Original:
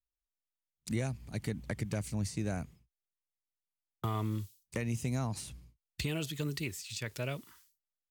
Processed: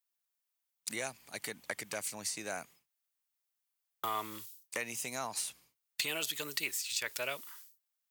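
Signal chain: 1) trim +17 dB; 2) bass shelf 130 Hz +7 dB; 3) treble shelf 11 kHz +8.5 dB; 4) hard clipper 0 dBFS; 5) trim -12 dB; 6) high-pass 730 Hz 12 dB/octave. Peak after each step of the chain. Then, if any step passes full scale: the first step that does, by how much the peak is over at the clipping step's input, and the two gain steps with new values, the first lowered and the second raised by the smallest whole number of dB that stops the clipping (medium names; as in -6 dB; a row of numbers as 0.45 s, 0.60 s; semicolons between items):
-6.0 dBFS, -2.5 dBFS, -2.5 dBFS, -2.5 dBFS, -14.5 dBFS, -16.0 dBFS; nothing clips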